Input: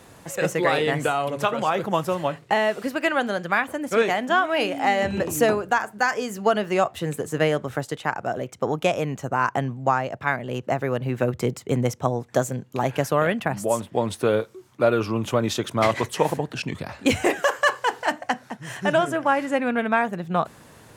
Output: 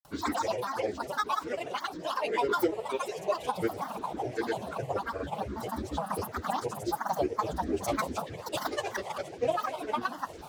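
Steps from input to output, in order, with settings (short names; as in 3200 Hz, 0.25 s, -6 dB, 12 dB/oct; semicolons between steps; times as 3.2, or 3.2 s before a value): notches 60/120/180/240/300/360/420/480/540 Hz; reverse; upward compressor, threshold -36 dBFS; reverse; fixed phaser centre 590 Hz, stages 4; plain phase-vocoder stretch 0.5×; on a send: diffused feedback echo 1.099 s, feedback 61%, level -13.5 dB; on the sum: grains, pitch spread up and down by 12 st; gain -1.5 dB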